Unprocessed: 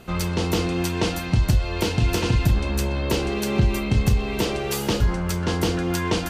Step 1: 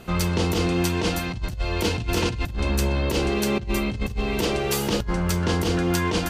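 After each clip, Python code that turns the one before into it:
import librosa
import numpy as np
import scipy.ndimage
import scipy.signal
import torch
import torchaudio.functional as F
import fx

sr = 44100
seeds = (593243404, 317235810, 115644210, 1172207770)

y = fx.over_compress(x, sr, threshold_db=-22.0, ratio=-0.5)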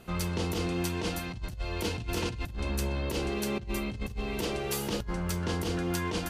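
y = fx.peak_eq(x, sr, hz=11000.0, db=4.5, octaves=0.47)
y = F.gain(torch.from_numpy(y), -8.5).numpy()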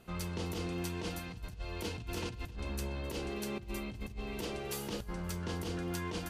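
y = fx.echo_feedback(x, sr, ms=263, feedback_pct=47, wet_db=-21)
y = F.gain(torch.from_numpy(y), -7.0).numpy()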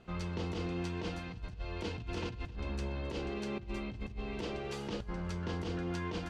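y = fx.air_absorb(x, sr, metres=120.0)
y = F.gain(torch.from_numpy(y), 1.0).numpy()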